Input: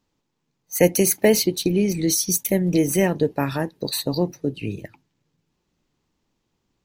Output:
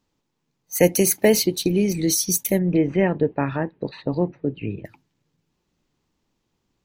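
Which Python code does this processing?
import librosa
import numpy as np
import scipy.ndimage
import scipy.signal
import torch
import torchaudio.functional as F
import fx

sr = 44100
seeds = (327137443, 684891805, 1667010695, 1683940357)

y = fx.lowpass(x, sr, hz=2600.0, slope=24, at=(2.58, 4.84), fade=0.02)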